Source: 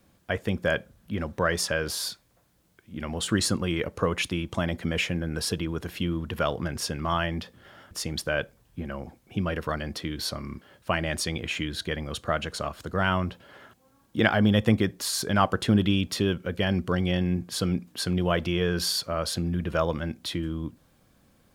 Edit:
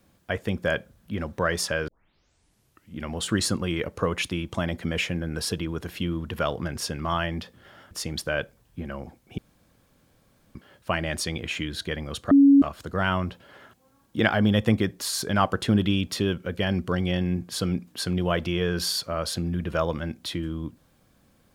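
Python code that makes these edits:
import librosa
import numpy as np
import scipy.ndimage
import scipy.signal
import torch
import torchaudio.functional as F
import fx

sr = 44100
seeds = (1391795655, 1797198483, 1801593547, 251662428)

y = fx.edit(x, sr, fx.tape_start(start_s=1.88, length_s=1.08),
    fx.room_tone_fill(start_s=9.38, length_s=1.17),
    fx.bleep(start_s=12.31, length_s=0.31, hz=279.0, db=-11.0), tone=tone)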